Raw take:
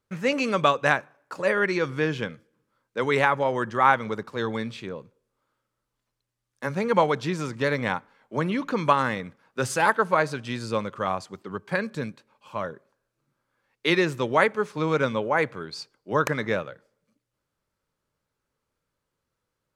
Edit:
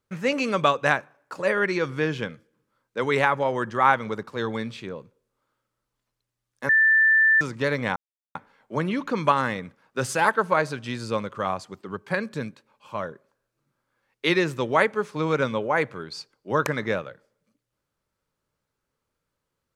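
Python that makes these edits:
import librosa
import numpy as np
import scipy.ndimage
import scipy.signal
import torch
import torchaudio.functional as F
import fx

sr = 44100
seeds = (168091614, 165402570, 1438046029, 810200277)

y = fx.edit(x, sr, fx.bleep(start_s=6.69, length_s=0.72, hz=1770.0, db=-14.5),
    fx.insert_silence(at_s=7.96, length_s=0.39), tone=tone)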